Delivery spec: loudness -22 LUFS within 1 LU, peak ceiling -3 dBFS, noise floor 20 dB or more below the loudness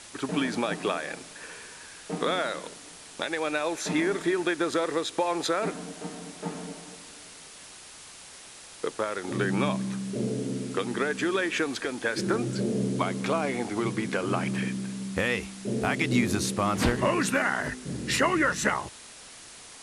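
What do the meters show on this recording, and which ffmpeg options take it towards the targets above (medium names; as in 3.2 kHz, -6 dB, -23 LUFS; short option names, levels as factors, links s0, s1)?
noise floor -47 dBFS; noise floor target -49 dBFS; loudness -28.5 LUFS; peak level -11.0 dBFS; loudness target -22.0 LUFS
-> -af "afftdn=nr=6:nf=-47"
-af "volume=2.11"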